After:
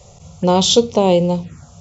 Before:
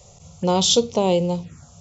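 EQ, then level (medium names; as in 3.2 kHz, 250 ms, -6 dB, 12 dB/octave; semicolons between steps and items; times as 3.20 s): treble shelf 5.3 kHz -7 dB; +5.5 dB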